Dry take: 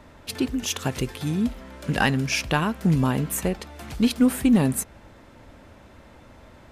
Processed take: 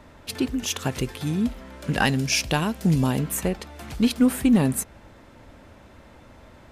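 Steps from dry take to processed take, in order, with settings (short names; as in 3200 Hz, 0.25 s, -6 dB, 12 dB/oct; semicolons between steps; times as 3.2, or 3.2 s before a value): 2.05–3.19 EQ curve 770 Hz 0 dB, 1200 Hz -5 dB, 5000 Hz +5 dB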